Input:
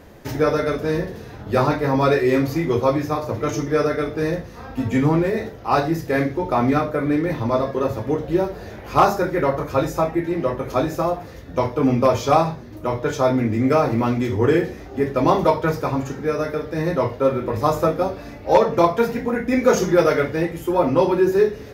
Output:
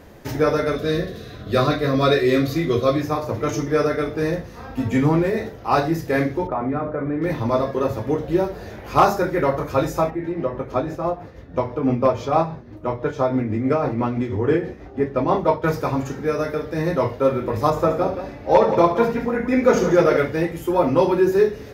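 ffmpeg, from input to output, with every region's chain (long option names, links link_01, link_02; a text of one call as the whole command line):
ffmpeg -i in.wav -filter_complex "[0:a]asettb=1/sr,asplit=3[link_01][link_02][link_03];[link_01]atrim=end=0.764[link_04];[link_02]atrim=start=0.76:end=3.01,asetpts=PTS-STARTPTS,afade=type=in:duration=0.004:curve=qsin,afade=type=out:start_time=2.246:duration=0.004:curve=qsin,asuperstop=centerf=870:order=12:qfactor=4.2,equalizer=frequency=3800:width_type=o:width=0.31:gain=11[link_05];[link_03]atrim=start=3.006[link_06];[link_04][link_05]acrossfade=duration=0.004:curve1=hsin:curve2=qsin[link_07];[link_07][link_06]acrossfade=duration=0.004:curve1=qsin:curve2=hsin,asettb=1/sr,asplit=3[link_08][link_09][link_10];[link_08]atrim=end=6.474[link_11];[link_09]atrim=start=6.47:end=7.22,asetpts=PTS-STARTPTS,afade=type=in:duration=0.004:curve=qsin,afade=type=out:start_time=0.746:duration=0.004:curve=qsin,lowpass=1500,bandreject=frequency=60:width_type=h:width=6,bandreject=frequency=120:width_type=h:width=6,bandreject=frequency=180:width_type=h:width=6,bandreject=frequency=240:width_type=h:width=6,bandreject=frequency=300:width_type=h:width=6,bandreject=frequency=360:width_type=h:width=6,bandreject=frequency=420:width_type=h:width=6,bandreject=frequency=480:width_type=h:width=6,acompressor=threshold=-21dB:ratio=2.5:attack=3.2:release=140:knee=1:detection=peak[link_12];[link_10]atrim=start=7.216[link_13];[link_11][link_12]acrossfade=duration=0.004:curve1=hsin:curve2=qsin[link_14];[link_14][link_13]acrossfade=duration=0.004:curve1=qsin:curve2=hsin,asettb=1/sr,asplit=3[link_15][link_16][link_17];[link_15]atrim=end=10.104[link_18];[link_16]atrim=start=10.1:end=15.64,asetpts=PTS-STARTPTS,afade=type=in:duration=0.004:curve=qsin,afade=type=out:start_time=5.536:duration=0.004:curve=qsin,lowpass=frequency=2000:poles=1,tremolo=f=6.1:d=0.48[link_19];[link_17]atrim=start=15.636[link_20];[link_18][link_19]acrossfade=duration=0.004:curve1=hsin:curve2=qsin[link_21];[link_21][link_20]acrossfade=duration=0.004:curve1=qsin:curve2=hsin,asettb=1/sr,asplit=3[link_22][link_23][link_24];[link_22]atrim=end=17.704[link_25];[link_23]atrim=start=17.7:end=20.17,asetpts=PTS-STARTPTS,afade=type=in:duration=0.004:curve=qsin,afade=type=out:start_time=2.466:duration=0.004:curve=qsin,highshelf=frequency=5000:gain=-9.5,aecho=1:1:70|175:0.299|0.316,atrim=end_sample=108927[link_26];[link_24]atrim=start=20.166[link_27];[link_25][link_26]acrossfade=duration=0.004:curve1=hsin:curve2=qsin[link_28];[link_28][link_27]acrossfade=duration=0.004:curve1=qsin:curve2=hsin" out.wav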